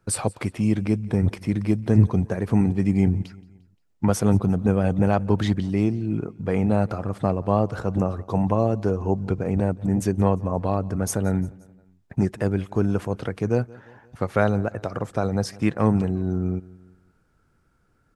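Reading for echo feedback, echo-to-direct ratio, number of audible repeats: 51%, −22.0 dB, 3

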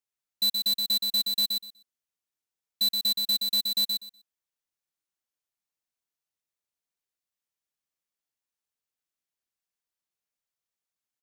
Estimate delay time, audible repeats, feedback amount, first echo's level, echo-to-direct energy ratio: 123 ms, 2, 17%, −4.5 dB, −4.5 dB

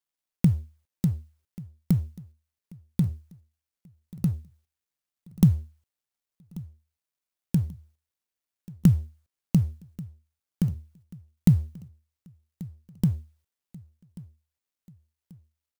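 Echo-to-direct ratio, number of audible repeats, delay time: −19.0 dB, 3, 1,136 ms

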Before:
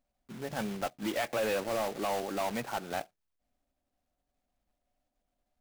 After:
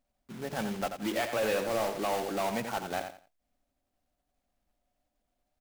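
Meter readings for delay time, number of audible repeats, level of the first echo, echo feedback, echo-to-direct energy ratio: 87 ms, 3, −8.0 dB, 24%, −7.5 dB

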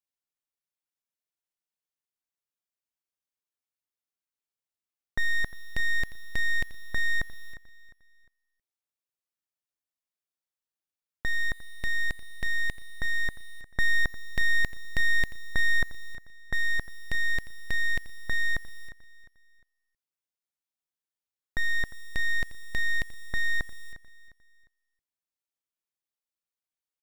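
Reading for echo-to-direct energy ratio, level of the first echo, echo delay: −16.0 dB, −16.5 dB, 354 ms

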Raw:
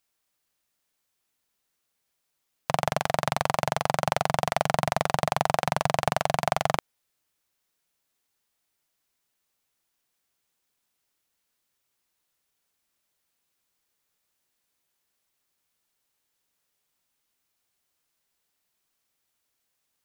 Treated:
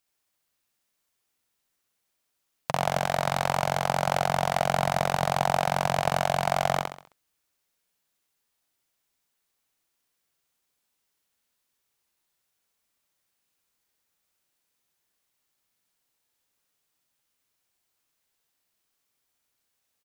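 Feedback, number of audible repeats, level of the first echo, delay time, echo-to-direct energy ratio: 40%, 5, −3.0 dB, 66 ms, −2.0 dB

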